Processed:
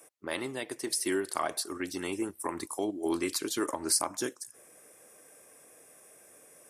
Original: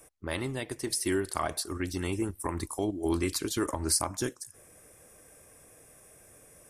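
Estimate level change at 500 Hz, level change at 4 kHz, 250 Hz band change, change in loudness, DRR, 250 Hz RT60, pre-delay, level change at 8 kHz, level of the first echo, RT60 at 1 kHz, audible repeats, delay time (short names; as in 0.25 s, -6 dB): -0.5 dB, 0.0 dB, -2.0 dB, -1.0 dB, none, none, none, 0.0 dB, none, none, none, none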